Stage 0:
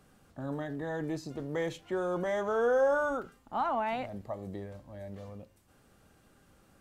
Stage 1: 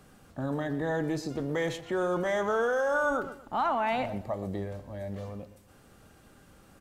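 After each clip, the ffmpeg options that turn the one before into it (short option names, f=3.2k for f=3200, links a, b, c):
-filter_complex "[0:a]asplit=2[a][b];[b]adelay=122,lowpass=f=3.9k:p=1,volume=-14dB,asplit=2[c][d];[d]adelay=122,lowpass=f=3.9k:p=1,volume=0.29,asplit=2[e][f];[f]adelay=122,lowpass=f=3.9k:p=1,volume=0.29[g];[a][c][e][g]amix=inputs=4:normalize=0,acrossover=split=1300[h][i];[h]alimiter=level_in=5dB:limit=-24dB:level=0:latency=1,volume=-5dB[j];[j][i]amix=inputs=2:normalize=0,volume=6dB"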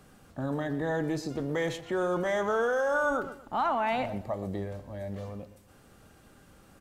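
-af anull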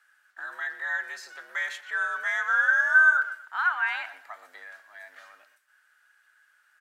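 -af "agate=range=-9dB:threshold=-51dB:ratio=16:detection=peak,highpass=f=1.5k:t=q:w=6.8,afreqshift=70,volume=-1.5dB"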